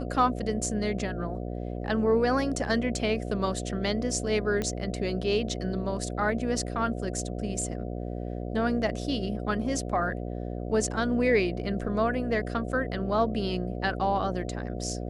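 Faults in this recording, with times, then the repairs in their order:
buzz 60 Hz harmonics 12 -34 dBFS
4.62 pop -17 dBFS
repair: de-click; de-hum 60 Hz, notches 12

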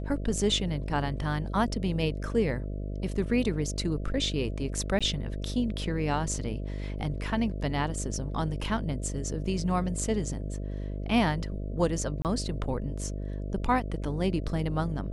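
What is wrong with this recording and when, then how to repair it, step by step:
buzz 50 Hz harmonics 13 -34 dBFS
4.99–5.01 gap 16 ms
12.22–12.25 gap 28 ms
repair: de-hum 50 Hz, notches 13; interpolate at 4.99, 16 ms; interpolate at 12.22, 28 ms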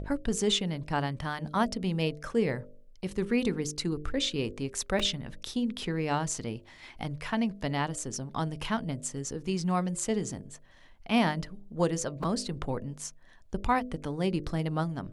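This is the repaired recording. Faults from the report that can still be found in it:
none

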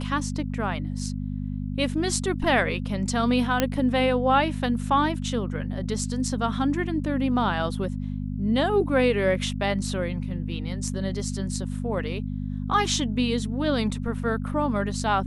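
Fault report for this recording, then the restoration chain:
hum 50 Hz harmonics 5 -30 dBFS
3.6 pop -6 dBFS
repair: de-click; de-hum 50 Hz, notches 5

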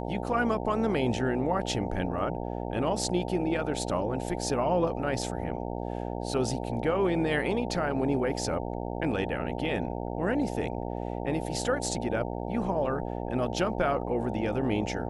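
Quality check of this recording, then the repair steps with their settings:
buzz 60 Hz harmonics 15 -34 dBFS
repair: de-hum 60 Hz, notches 15

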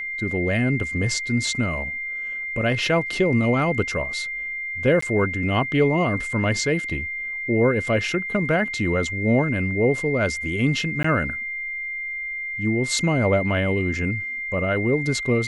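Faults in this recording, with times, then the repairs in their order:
tone 2100 Hz -27 dBFS
5.01–5.02 gap 14 ms
11.03–11.04 gap 14 ms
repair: notch 2100 Hz, Q 30; interpolate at 5.01, 14 ms; interpolate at 11.03, 14 ms

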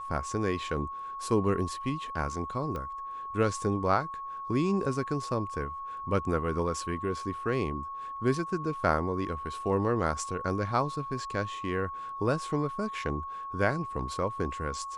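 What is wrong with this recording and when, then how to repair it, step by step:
tone 1100 Hz -36 dBFS
2.76 pop -24 dBFS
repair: de-click; notch 1100 Hz, Q 30

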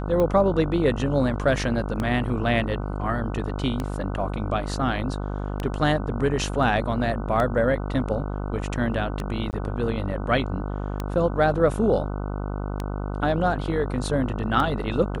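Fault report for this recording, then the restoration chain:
buzz 50 Hz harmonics 30 -29 dBFS
tick 33 1/3 rpm -14 dBFS
9.51–9.53 gap 19 ms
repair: de-click; de-hum 50 Hz, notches 30; interpolate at 9.51, 19 ms

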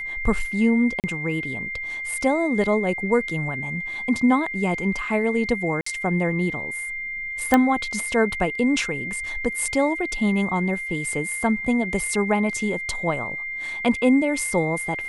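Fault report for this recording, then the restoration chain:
tone 2100 Hz -28 dBFS
1–1.04 gap 38 ms
5.81–5.86 gap 54 ms
7.54 pop -4 dBFS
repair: de-click; notch 2100 Hz, Q 30; interpolate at 1, 38 ms; interpolate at 5.81, 54 ms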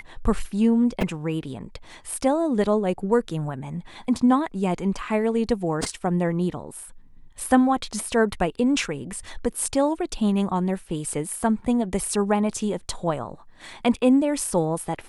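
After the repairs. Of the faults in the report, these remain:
none

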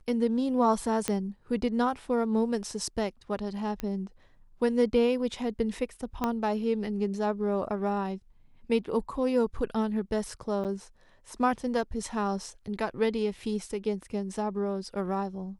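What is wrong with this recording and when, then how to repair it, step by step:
1.08 pop -12 dBFS
3.8 pop -19 dBFS
6.24 pop -14 dBFS
10.64–10.65 gap 7.9 ms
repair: de-click; interpolate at 10.64, 7.9 ms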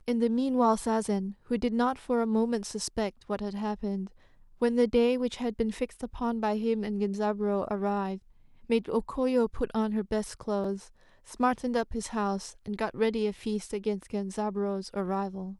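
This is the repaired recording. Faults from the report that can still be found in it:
1.08 pop
6.24 pop

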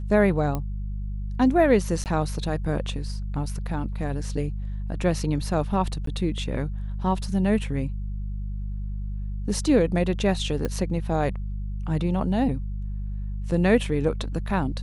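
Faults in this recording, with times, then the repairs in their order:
hum 50 Hz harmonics 4 -30 dBFS
0.55 pop -15 dBFS
2.04–2.06 gap 18 ms
6.06–6.07 gap 13 ms
10.65 pop -15 dBFS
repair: de-click; de-hum 50 Hz, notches 4; interpolate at 2.04, 18 ms; interpolate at 6.06, 13 ms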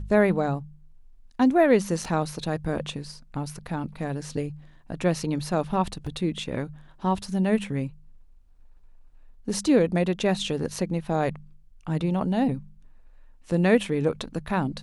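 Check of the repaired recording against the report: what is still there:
none

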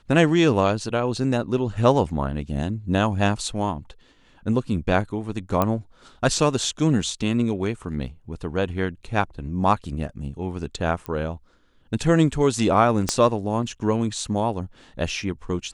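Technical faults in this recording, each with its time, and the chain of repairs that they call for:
5.62 pop -8 dBFS
11.06 pop -17 dBFS
13.09 pop -7 dBFS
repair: de-click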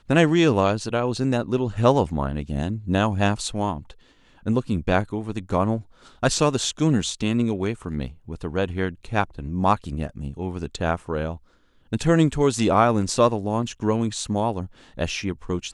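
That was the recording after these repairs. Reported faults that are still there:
13.09 pop

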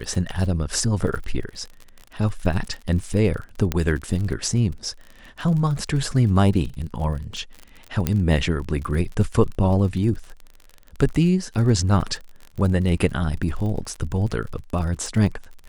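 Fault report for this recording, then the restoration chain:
crackle 41/s -30 dBFS
3.72 pop -7 dBFS
8.07 pop -7 dBFS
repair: de-click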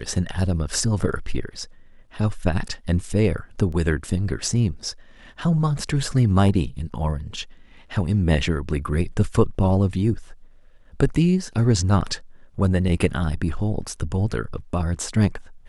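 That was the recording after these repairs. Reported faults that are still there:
3.72 pop

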